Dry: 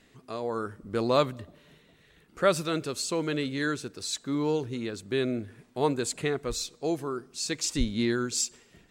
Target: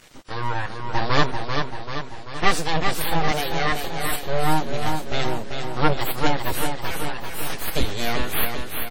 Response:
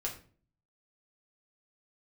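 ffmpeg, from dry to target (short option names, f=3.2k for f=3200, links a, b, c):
-filter_complex "[0:a]agate=range=-33dB:threshold=-49dB:ratio=3:detection=peak,aecho=1:1:6.5:0.81,acompressor=mode=upward:threshold=-42dB:ratio=2.5,acrusher=bits=8:mix=0:aa=0.000001,asettb=1/sr,asplit=3[a][b][c];[a]atrim=end=6.724[d];[b]atrim=start=6.72:end=7.68,asetpts=PTS-STARTPTS,afade=t=in:d=0.004:c=qsin,afade=t=out:st=0.956:d=0.004:c=qsin,aeval=exprs='0.0473*(abs(mod(val(0)/0.0473+3,4)-2)-1)':c=same[e];[c]atrim=start=7.676[f];[d][e]acrossfade=d=0.004:c1=hsin:c2=qsin[g];[g][f]acrossfade=d=0.004:c1=qsin:c2=hsin,acontrast=53,aeval=exprs='abs(val(0))':c=same,asettb=1/sr,asplit=3[h][i][j];[h]atrim=end=3.314[k];[i]atrim=start=3.31:end=3.72,asetpts=PTS-STARTPTS,afade=t=in:d=0.004:c=qsin,afade=t=out:st=0.406:d=0.004:c=qsin,highpass=220,lowpass=7.9k[l];[j]atrim=start=3.716[m];[k][l]acrossfade=d=0.004:c1=hsin:c2=qsin[n];[n][m]acrossfade=d=0.004:c1=qsin:c2=hsin,aecho=1:1:389|778|1167|1556|1945|2334|2723:0.531|0.297|0.166|0.0932|0.0522|0.0292|0.0164" -ar 48000 -c:a wmav2 -b:a 32k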